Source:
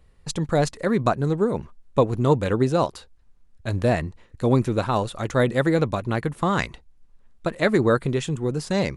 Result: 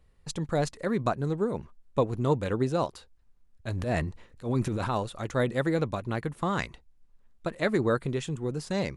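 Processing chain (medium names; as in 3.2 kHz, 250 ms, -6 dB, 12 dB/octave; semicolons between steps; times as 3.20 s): 3.71–4.89 s: transient shaper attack -11 dB, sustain +7 dB; trim -6.5 dB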